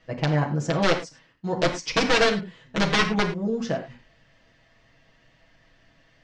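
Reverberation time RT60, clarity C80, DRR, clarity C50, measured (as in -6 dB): no single decay rate, 12.5 dB, -2.0 dB, 9.5 dB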